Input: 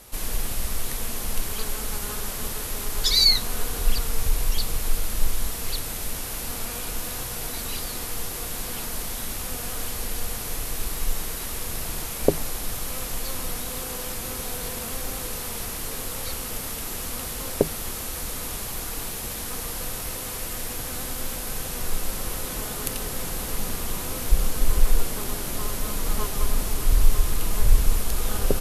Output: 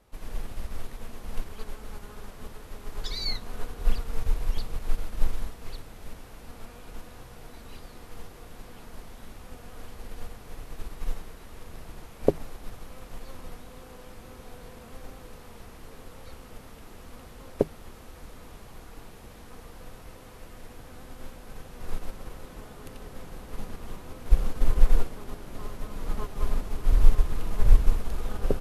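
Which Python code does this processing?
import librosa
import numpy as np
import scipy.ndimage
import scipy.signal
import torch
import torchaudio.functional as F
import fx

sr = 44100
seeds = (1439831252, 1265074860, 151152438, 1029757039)

y = fx.lowpass(x, sr, hz=1400.0, slope=6)
y = fx.upward_expand(y, sr, threshold_db=-32.0, expansion=1.5)
y = y * librosa.db_to_amplitude(2.0)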